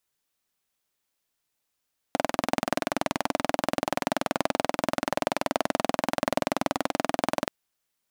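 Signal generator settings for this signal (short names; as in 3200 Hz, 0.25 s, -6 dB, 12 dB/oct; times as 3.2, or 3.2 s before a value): single-cylinder engine model, steady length 5.33 s, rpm 2500, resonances 280/610 Hz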